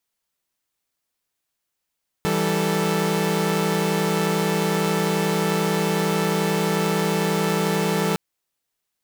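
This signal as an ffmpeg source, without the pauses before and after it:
-f lavfi -i "aevalsrc='0.0841*((2*mod(164.81*t,1)-1)+(2*mod(196*t,1)-1)+(2*mod(440*t,1)-1))':d=5.91:s=44100"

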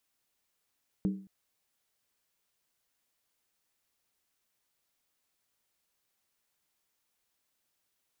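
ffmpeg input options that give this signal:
-f lavfi -i "aevalsrc='0.0668*pow(10,-3*t/0.44)*sin(2*PI*193*t)+0.0266*pow(10,-3*t/0.349)*sin(2*PI*307.6*t)+0.0106*pow(10,-3*t/0.301)*sin(2*PI*412.2*t)+0.00422*pow(10,-3*t/0.29)*sin(2*PI*443.1*t)+0.00168*pow(10,-3*t/0.27)*sin(2*PI*512*t)':d=0.22:s=44100"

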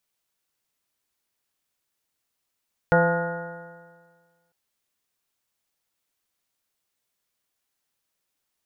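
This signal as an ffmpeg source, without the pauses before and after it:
-f lavfi -i "aevalsrc='0.1*pow(10,-3*t/1.64)*sin(2*PI*168.19*t)+0.0282*pow(10,-3*t/1.64)*sin(2*PI*337.54*t)+0.141*pow(10,-3*t/1.64)*sin(2*PI*509.19*t)+0.0708*pow(10,-3*t/1.64)*sin(2*PI*684.25*t)+0.0708*pow(10,-3*t/1.64)*sin(2*PI*863.81*t)+0.0178*pow(10,-3*t/1.64)*sin(2*PI*1048.9*t)+0.015*pow(10,-3*t/1.64)*sin(2*PI*1240.5*t)+0.1*pow(10,-3*t/1.64)*sin(2*PI*1439.52*t)+0.0112*pow(10,-3*t/1.64)*sin(2*PI*1646.83*t)+0.0224*pow(10,-3*t/1.64)*sin(2*PI*1863.21*t)':d=1.6:s=44100"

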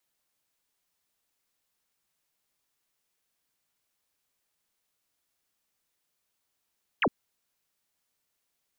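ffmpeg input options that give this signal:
-f lavfi -i "aevalsrc='0.0891*clip(t/0.002,0,1)*clip((0.06-t)/0.002,0,1)*sin(2*PI*3300*0.06/log(170/3300)*(exp(log(170/3300)*t/0.06)-1))':d=0.06:s=44100"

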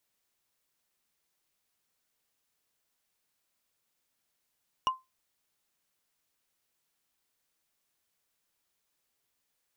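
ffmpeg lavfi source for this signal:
-f lavfi -i "aevalsrc='0.1*pow(10,-3*t/0.2)*sin(2*PI*1040*t)+0.0447*pow(10,-3*t/0.059)*sin(2*PI*2867.3*t)+0.02*pow(10,-3*t/0.026)*sin(2*PI*5620.2*t)+0.00891*pow(10,-3*t/0.014)*sin(2*PI*9290.3*t)+0.00398*pow(10,-3*t/0.009)*sin(2*PI*13873.6*t)':d=0.45:s=44100"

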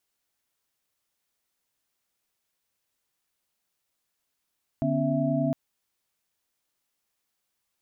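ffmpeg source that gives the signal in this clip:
-f lavfi -i "aevalsrc='0.0398*(sin(2*PI*146.83*t)+sin(2*PI*246.94*t)+sin(2*PI*277.18*t)+sin(2*PI*659.26*t))':d=0.71:s=44100"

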